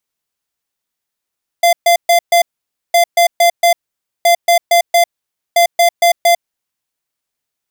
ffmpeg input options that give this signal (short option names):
-f lavfi -i "aevalsrc='0.355*(2*lt(mod(689*t,1),0.5)-1)*clip(min(mod(mod(t,1.31),0.23),0.1-mod(mod(t,1.31),0.23))/0.005,0,1)*lt(mod(t,1.31),0.92)':d=5.24:s=44100"